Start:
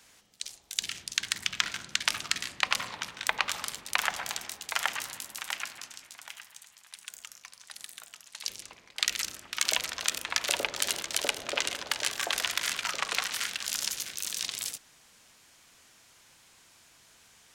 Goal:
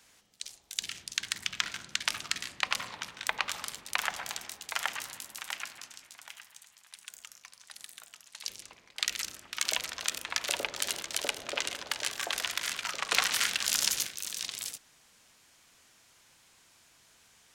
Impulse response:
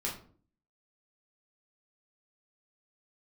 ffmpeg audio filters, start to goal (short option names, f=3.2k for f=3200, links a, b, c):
-filter_complex "[0:a]asettb=1/sr,asplit=3[a][b][c];[a]atrim=end=13.114[d];[b]atrim=start=13.11:end=14.07,asetpts=PTS-STARTPTS,afade=t=in:d=0.004:c=qsin,afade=t=out:st=0.956:d=0.004:c=qsin,acontrast=85[e];[c]atrim=start=14.066[f];[d][e]acrossfade=d=0.004:c1=hsin:c2=qsin[g];[g][f]acrossfade=d=0.004:c1=qsin:c2=hsin,volume=-3dB"